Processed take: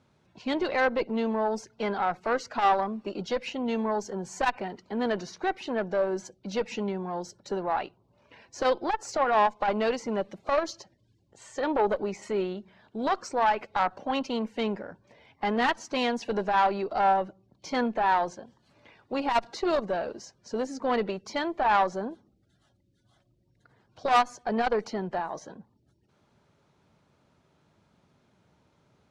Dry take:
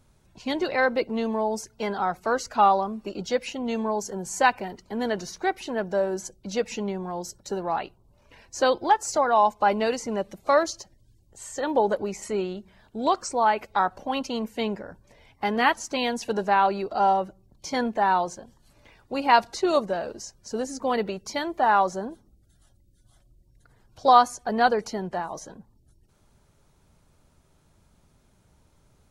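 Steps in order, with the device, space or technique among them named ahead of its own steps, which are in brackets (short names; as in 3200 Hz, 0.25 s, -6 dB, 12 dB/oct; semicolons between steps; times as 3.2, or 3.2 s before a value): valve radio (BPF 130–4300 Hz; tube stage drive 16 dB, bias 0.45; core saturation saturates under 270 Hz); gain +1.5 dB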